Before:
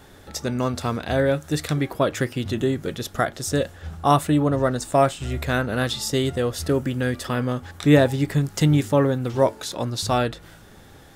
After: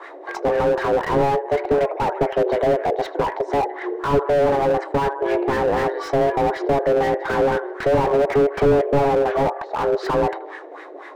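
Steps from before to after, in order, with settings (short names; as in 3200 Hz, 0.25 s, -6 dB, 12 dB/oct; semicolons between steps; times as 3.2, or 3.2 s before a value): frequency shift +280 Hz; treble ducked by the level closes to 900 Hz, closed at -16.5 dBFS; dynamic EQ 1300 Hz, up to -4 dB, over -41 dBFS, Q 4.6; LFO low-pass sine 4 Hz 500–1800 Hz; RIAA curve recording; on a send: analogue delay 79 ms, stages 2048, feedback 61%, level -21.5 dB; on the sum: slew limiter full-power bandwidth 36 Hz; gain +8.5 dB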